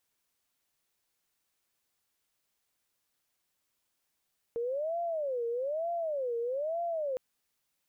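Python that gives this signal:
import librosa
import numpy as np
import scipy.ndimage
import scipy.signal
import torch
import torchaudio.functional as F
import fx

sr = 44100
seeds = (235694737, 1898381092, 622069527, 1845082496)

y = fx.siren(sr, length_s=2.61, kind='wail', low_hz=465.0, high_hz=688.0, per_s=1.1, wave='sine', level_db=-30.0)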